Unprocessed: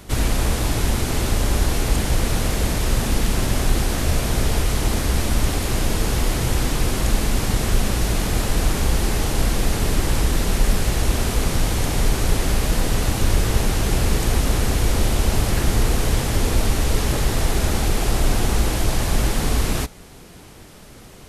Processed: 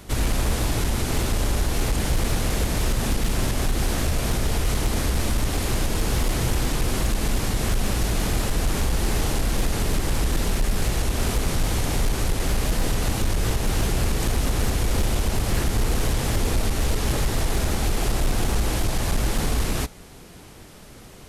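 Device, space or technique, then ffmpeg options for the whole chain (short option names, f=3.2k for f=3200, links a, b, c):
limiter into clipper: -af "alimiter=limit=-10dB:level=0:latency=1:release=125,asoftclip=type=hard:threshold=-14dB,volume=-1.5dB"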